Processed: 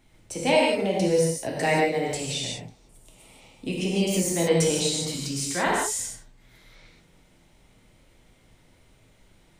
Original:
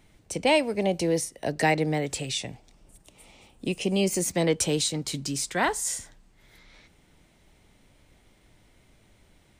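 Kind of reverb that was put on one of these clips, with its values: gated-style reverb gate 200 ms flat, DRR -3.5 dB; trim -3.5 dB

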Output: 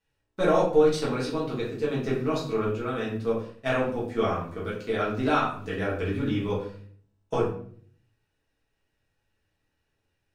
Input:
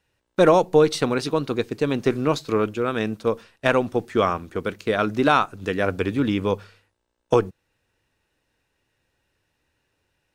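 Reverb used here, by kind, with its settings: simulated room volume 64 m³, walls mixed, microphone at 1.5 m; trim -13.5 dB

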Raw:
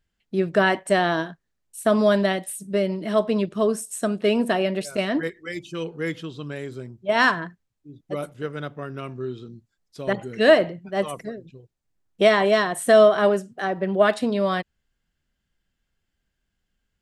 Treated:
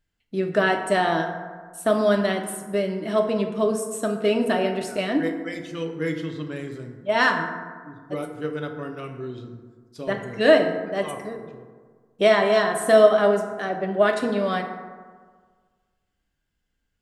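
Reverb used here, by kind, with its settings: FDN reverb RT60 1.6 s, low-frequency decay 1×, high-frequency decay 0.4×, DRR 3.5 dB; trim -2 dB

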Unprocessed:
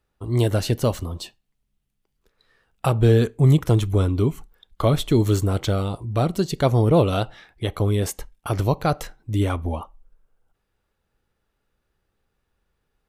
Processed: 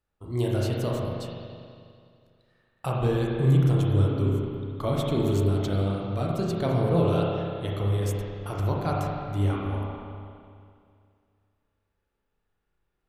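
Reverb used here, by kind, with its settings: spring tank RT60 2.3 s, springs 30/41 ms, chirp 65 ms, DRR -3.5 dB; trim -10 dB

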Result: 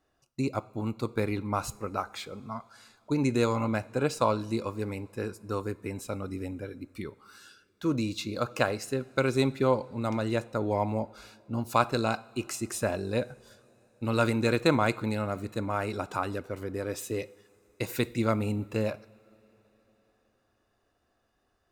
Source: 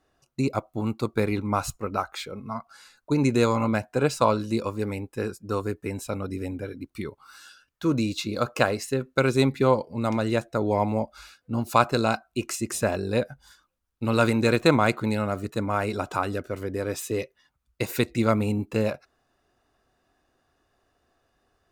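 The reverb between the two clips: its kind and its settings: two-slope reverb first 0.51 s, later 4.2 s, from -17 dB, DRR 16.5 dB; trim -4.5 dB

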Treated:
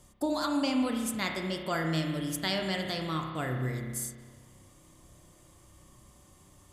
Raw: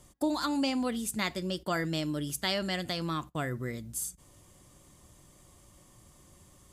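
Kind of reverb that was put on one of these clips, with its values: spring tank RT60 1.6 s, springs 31 ms, chirp 50 ms, DRR 2.5 dB; trim -1 dB

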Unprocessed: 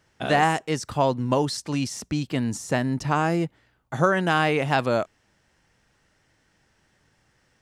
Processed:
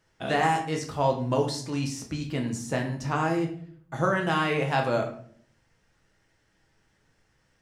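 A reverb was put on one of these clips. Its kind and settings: simulated room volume 72 m³, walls mixed, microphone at 0.65 m; trim -6 dB

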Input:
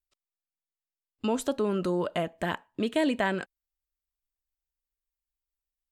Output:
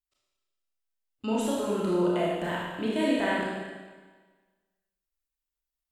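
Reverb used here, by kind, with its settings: Schroeder reverb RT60 1.4 s, combs from 25 ms, DRR -6 dB; trim -6 dB

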